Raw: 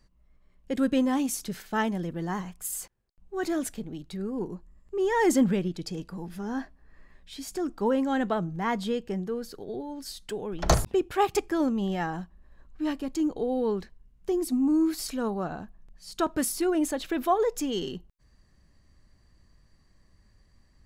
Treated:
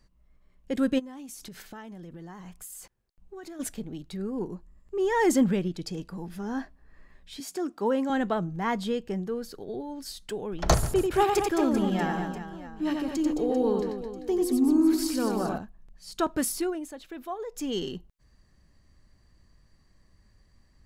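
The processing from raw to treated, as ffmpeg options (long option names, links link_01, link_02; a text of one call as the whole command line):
ffmpeg -i in.wav -filter_complex "[0:a]asplit=3[link_01][link_02][link_03];[link_01]afade=type=out:start_time=0.98:duration=0.02[link_04];[link_02]acompressor=threshold=-39dB:ratio=10:attack=3.2:release=140:knee=1:detection=peak,afade=type=in:start_time=0.98:duration=0.02,afade=type=out:start_time=3.59:duration=0.02[link_05];[link_03]afade=type=in:start_time=3.59:duration=0.02[link_06];[link_04][link_05][link_06]amix=inputs=3:normalize=0,asettb=1/sr,asplit=3[link_07][link_08][link_09];[link_07]atrim=end=7.404[link_10];[link_08]atrim=start=7.4:end=8.1,asetpts=PTS-STARTPTS,afade=type=in:duration=0.004:curve=qsin,afade=type=out:start_time=0.696:duration=0.004:curve=qsin,highpass=220[link_11];[link_09]atrim=start=8.096[link_12];[link_10][link_11]acrossfade=duration=0.004:curve1=hsin:curve2=qsin[link_13];[link_13][link_12]acrossfade=duration=0.004:curve1=qsin:curve2=hsin,asettb=1/sr,asplit=3[link_14][link_15][link_16];[link_14]atrim=end=10.744[link_17];[link_15]atrim=start=10.74:end=15.58,asetpts=PTS-STARTPTS,afade=type=in:duration=0.004:curve=qsin,afade=type=out:start_time=4.836:duration=0.004:curve=qsin,aecho=1:1:90|216|392.4|639.4|985.1:0.631|0.398|0.251|0.158|0.1,atrim=end_sample=213444[link_18];[link_16]atrim=start=15.576[link_19];[link_17][link_18]acrossfade=duration=0.004:curve1=hsin:curve2=qsin[link_20];[link_20][link_19]acrossfade=duration=0.004:curve1=qsin:curve2=hsin,asplit=3[link_21][link_22][link_23];[link_21]atrim=end=16.8,asetpts=PTS-STARTPTS,afade=type=out:start_time=16.57:duration=0.23:silence=0.266073[link_24];[link_22]atrim=start=16.8:end=17.49,asetpts=PTS-STARTPTS,volume=-11.5dB[link_25];[link_23]atrim=start=17.49,asetpts=PTS-STARTPTS,afade=type=in:duration=0.23:silence=0.266073[link_26];[link_24][link_25][link_26]concat=n=3:v=0:a=1" out.wav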